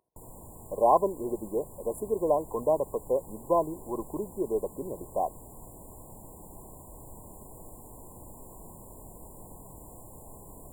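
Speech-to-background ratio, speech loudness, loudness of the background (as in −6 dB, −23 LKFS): 18.5 dB, −29.5 LKFS, −48.0 LKFS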